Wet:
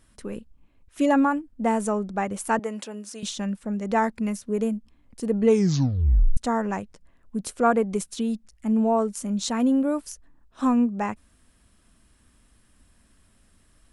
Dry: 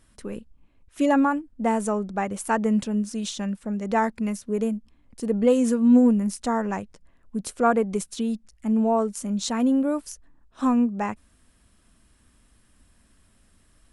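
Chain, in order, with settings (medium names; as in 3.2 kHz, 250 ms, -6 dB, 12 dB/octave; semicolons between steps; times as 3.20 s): 2.59–3.23 s: high-pass 460 Hz 12 dB/octave; 5.40 s: tape stop 0.97 s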